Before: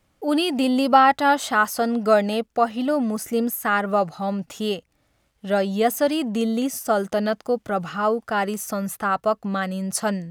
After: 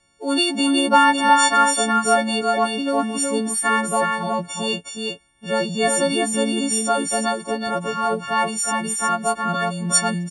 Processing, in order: partials quantised in pitch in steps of 4 st; Chebyshev low-pass 10 kHz, order 6; delay 367 ms -3.5 dB

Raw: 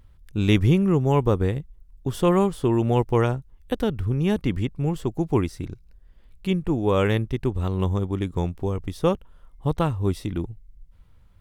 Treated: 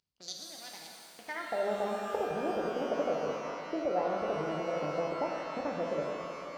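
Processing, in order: local Wiener filter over 41 samples; treble shelf 3.1 kHz +10 dB; waveshaping leveller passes 2; compression 12:1, threshold -25 dBFS, peak gain reduction 17 dB; band-pass sweep 2.7 kHz -> 320 Hz, 1.88–2.85 s; speed mistake 45 rpm record played at 78 rpm; pitch-shifted reverb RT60 2.7 s, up +12 st, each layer -8 dB, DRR -1 dB

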